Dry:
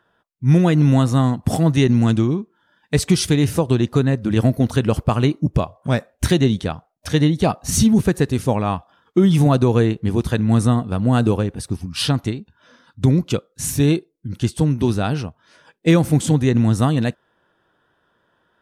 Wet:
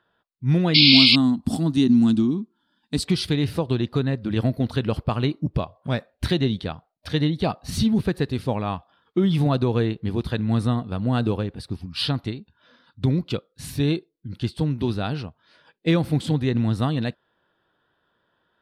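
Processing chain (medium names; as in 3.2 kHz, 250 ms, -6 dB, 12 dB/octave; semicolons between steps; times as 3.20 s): 0.76–3.05 s: graphic EQ 125/250/500/2000/8000 Hz -8/+12/-11/-9/+10 dB; 0.74–1.16 s: painted sound noise 2.1–5.4 kHz -12 dBFS; resonant high shelf 5.3 kHz -6.5 dB, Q 3; trim -6 dB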